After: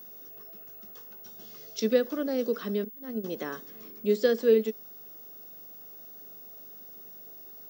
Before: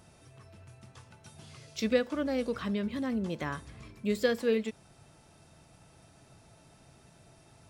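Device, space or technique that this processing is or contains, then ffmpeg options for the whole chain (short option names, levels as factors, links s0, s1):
old television with a line whistle: -filter_complex "[0:a]asettb=1/sr,asplit=3[s0][s1][s2];[s0]atrim=end=2.844[s3];[s1]atrim=start=2.84:end=3.24,asetpts=PTS-STARTPTS,afade=t=in:d=0.004:c=qsin,afade=t=out:st=0.396:d=0.004:c=qsin,agate=range=0.0224:threshold=0.0316:ratio=16:detection=peak[s4];[s2]atrim=start=3.236[s5];[s3][s4]acrossfade=d=0.004:c1=hsin:c2=qsin[s6];[s6][s5]acrossfade=d=0.004:c1=qsin:c2=hsin,highpass=f=210:w=0.5412,highpass=f=210:w=1.3066,equalizer=f=220:t=q:w=4:g=4,equalizer=f=430:t=q:w=4:g=9,equalizer=f=960:t=q:w=4:g=-6,equalizer=f=2300:t=q:w=4:g=-8,equalizer=f=5700:t=q:w=4:g=6,lowpass=f=6900:w=0.5412,lowpass=f=6900:w=1.3066,aeval=exprs='val(0)+0.00631*sin(2*PI*15625*n/s)':c=same"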